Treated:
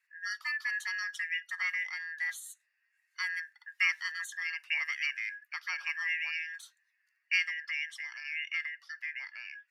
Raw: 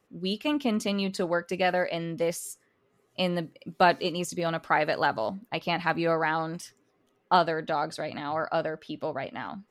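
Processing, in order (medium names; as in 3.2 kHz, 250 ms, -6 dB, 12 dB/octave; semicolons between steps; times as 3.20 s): four frequency bands reordered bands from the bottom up 2143; high-pass 1.1 kHz 24 dB/octave; trim -7.5 dB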